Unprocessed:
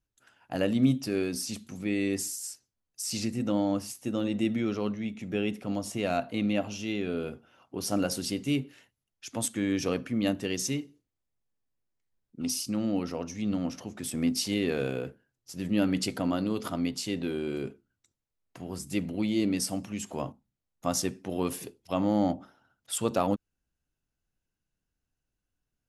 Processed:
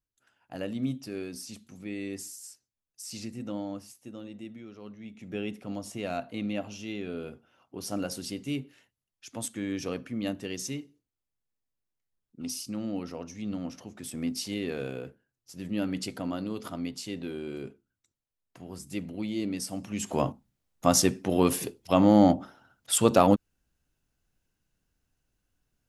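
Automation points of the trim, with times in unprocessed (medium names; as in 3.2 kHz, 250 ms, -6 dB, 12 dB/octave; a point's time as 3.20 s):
3.53 s -7.5 dB
4.72 s -17 dB
5.34 s -4.5 dB
19.69 s -4.5 dB
20.16 s +7 dB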